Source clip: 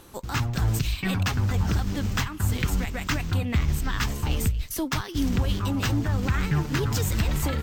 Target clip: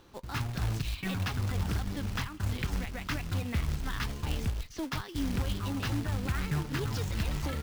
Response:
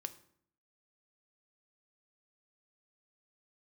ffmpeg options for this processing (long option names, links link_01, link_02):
-af "lowpass=frequency=5600:width=0.5412,lowpass=frequency=5600:width=1.3066,acrusher=bits=3:mode=log:mix=0:aa=0.000001,volume=-7.5dB"